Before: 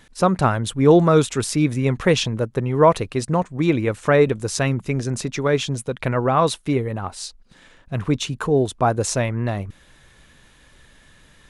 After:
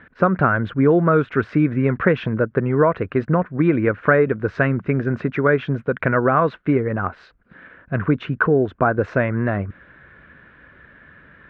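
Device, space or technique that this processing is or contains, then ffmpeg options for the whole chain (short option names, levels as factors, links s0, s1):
bass amplifier: -af "acompressor=threshold=0.126:ratio=4,highpass=76,equalizer=f=120:t=q:w=4:g=-4,equalizer=f=850:t=q:w=4:g=-7,equalizer=f=1500:t=q:w=4:g=9,lowpass=f=2100:w=0.5412,lowpass=f=2100:w=1.3066,volume=1.88"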